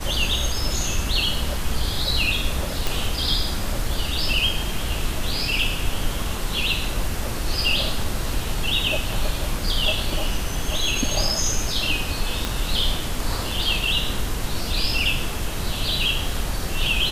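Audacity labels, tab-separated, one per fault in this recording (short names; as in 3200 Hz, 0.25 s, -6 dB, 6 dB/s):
2.870000	2.870000	pop
12.450000	12.450000	pop -9 dBFS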